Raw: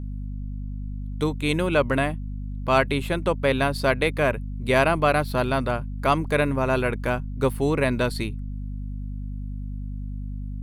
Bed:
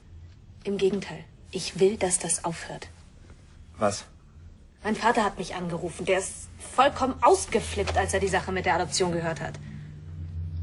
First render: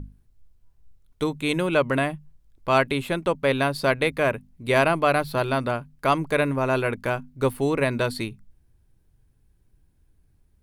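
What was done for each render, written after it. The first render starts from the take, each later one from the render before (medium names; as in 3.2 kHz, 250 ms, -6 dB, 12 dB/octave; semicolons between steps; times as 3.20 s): hum notches 50/100/150/200/250 Hz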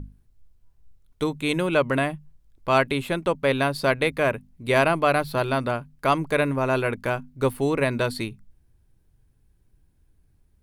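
no audible change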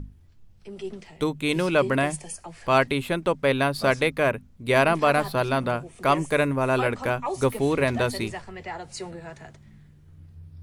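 add bed -11 dB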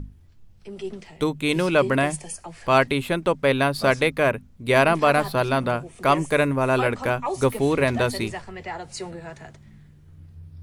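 trim +2 dB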